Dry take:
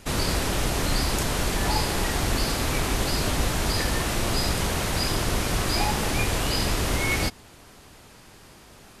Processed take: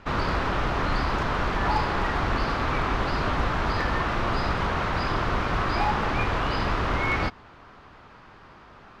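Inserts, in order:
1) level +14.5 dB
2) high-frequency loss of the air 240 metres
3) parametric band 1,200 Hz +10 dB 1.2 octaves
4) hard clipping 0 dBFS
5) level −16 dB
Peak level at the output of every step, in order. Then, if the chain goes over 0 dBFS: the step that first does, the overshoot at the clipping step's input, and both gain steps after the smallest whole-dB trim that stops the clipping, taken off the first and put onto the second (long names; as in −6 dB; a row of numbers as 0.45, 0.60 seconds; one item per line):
+4.0, +2.5, +5.0, 0.0, −16.0 dBFS
step 1, 5.0 dB
step 1 +9.5 dB, step 5 −11 dB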